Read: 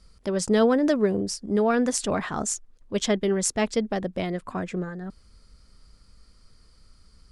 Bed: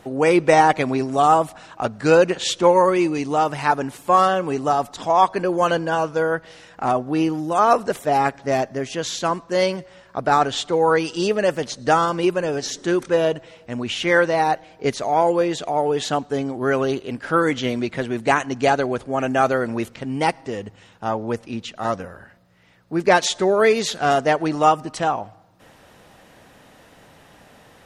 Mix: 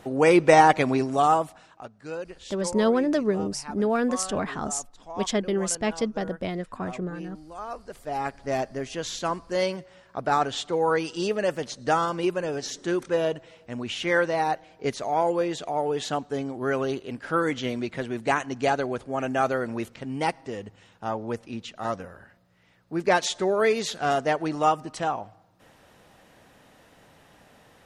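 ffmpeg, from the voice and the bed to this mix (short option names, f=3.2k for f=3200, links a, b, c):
-filter_complex "[0:a]adelay=2250,volume=-2dB[a];[1:a]volume=13dB,afade=t=out:st=0.92:d=0.97:silence=0.112202,afade=t=in:st=7.83:d=0.78:silence=0.188365[b];[a][b]amix=inputs=2:normalize=0"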